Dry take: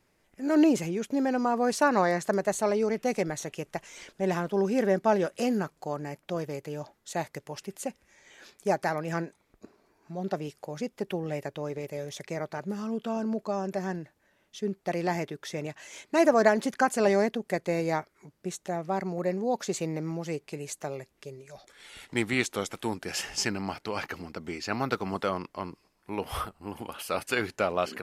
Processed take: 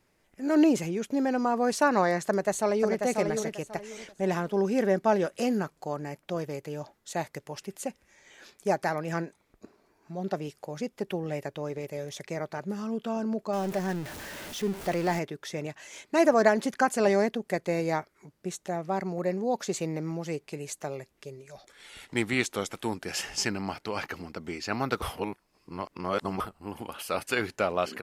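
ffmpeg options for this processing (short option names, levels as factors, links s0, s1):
-filter_complex "[0:a]asplit=2[s0][s1];[s1]afade=t=in:st=2.25:d=0.01,afade=t=out:st=2.99:d=0.01,aecho=0:1:540|1080|1620:0.562341|0.140585|0.0351463[s2];[s0][s2]amix=inputs=2:normalize=0,asettb=1/sr,asplit=3[s3][s4][s5];[s3]atrim=end=13.534[s6];[s4]atrim=start=13.53:end=15.19,asetpts=PTS-STARTPTS,afade=t=in:d=0.004:c=qsin,afade=t=out:st=1.656:d=0.004:c=qsin,aeval=exprs='val(0)+0.5*0.0178*sgn(val(0))':c=same[s7];[s5]atrim=start=15.186[s8];[s6][s7]acrossfade=d=0.004:c1=hsin:c2=qsin[s9];[s9][s8]acrossfade=d=0.004:c1=qsin:c2=hsin,asplit=3[s10][s11][s12];[s10]atrim=end=25.022[s13];[s11]atrim=start=25.018:end=26.402,asetpts=PTS-STARTPTS,areverse[s14];[s12]atrim=start=26.398[s15];[s13][s14]acrossfade=d=0.004:c1=hsin:c2=hsin[s16];[s16][s15]acrossfade=d=0.004:c1=hsin:c2=hsin"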